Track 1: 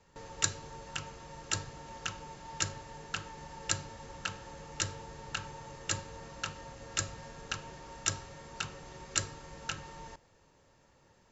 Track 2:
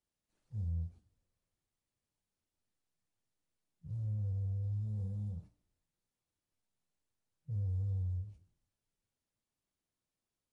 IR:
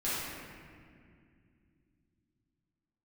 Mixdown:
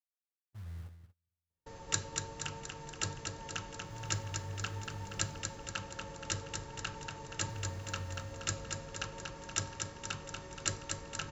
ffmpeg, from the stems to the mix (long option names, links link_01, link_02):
-filter_complex "[0:a]adelay=1500,volume=-3.5dB,asplit=2[link_01][link_02];[link_02]volume=-5dB[link_03];[1:a]acrusher=bits=7:mix=0:aa=0.000001,volume=-11dB,asplit=2[link_04][link_05];[link_05]volume=-9dB[link_06];[link_03][link_06]amix=inputs=2:normalize=0,aecho=0:1:237|474|711|948|1185|1422|1659|1896:1|0.53|0.281|0.149|0.0789|0.0418|0.0222|0.0117[link_07];[link_01][link_04][link_07]amix=inputs=3:normalize=0,agate=range=-31dB:threshold=-54dB:ratio=16:detection=peak,lowshelf=frequency=480:gain=3"